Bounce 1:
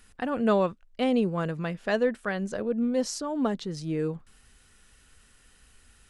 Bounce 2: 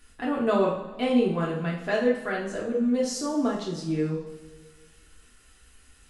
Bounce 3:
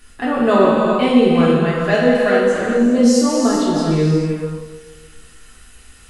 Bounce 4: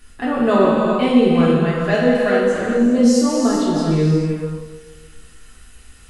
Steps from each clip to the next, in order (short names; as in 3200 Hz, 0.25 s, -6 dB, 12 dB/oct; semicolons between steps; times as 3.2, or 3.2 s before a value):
two-slope reverb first 0.49 s, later 1.9 s, from -16 dB, DRR -4.5 dB; gain -4 dB
non-linear reverb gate 0.46 s flat, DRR -0.5 dB; gain +8.5 dB
low shelf 230 Hz +4 dB; gain -2.5 dB